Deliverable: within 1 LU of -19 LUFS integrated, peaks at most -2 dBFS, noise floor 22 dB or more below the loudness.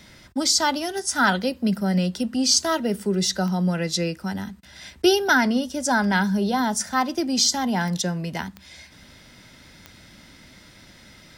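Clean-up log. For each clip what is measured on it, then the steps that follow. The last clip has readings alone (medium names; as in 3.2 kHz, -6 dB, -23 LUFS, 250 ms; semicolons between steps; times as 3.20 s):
clicks found 5; loudness -22.5 LUFS; peak level -6.0 dBFS; loudness target -19.0 LUFS
-> de-click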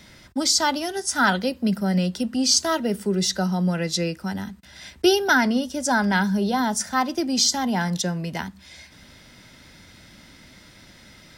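clicks found 0; loudness -22.5 LUFS; peak level -6.0 dBFS; loudness target -19.0 LUFS
-> trim +3.5 dB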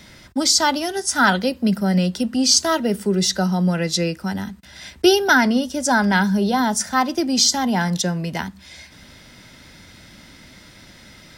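loudness -19.0 LUFS; peak level -2.5 dBFS; noise floor -46 dBFS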